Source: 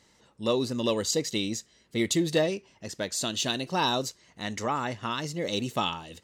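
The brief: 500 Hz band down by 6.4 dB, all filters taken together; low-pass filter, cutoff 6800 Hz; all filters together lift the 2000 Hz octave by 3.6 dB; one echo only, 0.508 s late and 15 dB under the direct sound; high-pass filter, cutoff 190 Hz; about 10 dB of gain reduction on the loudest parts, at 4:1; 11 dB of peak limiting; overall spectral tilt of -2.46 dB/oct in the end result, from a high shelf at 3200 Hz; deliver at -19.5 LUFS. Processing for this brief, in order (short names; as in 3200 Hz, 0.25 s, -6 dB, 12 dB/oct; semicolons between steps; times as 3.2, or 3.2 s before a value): HPF 190 Hz; LPF 6800 Hz; bell 500 Hz -8.5 dB; bell 2000 Hz +3.5 dB; high shelf 3200 Hz +4.5 dB; compressor 4:1, threshold -34 dBFS; limiter -29.5 dBFS; echo 0.508 s -15 dB; gain +21 dB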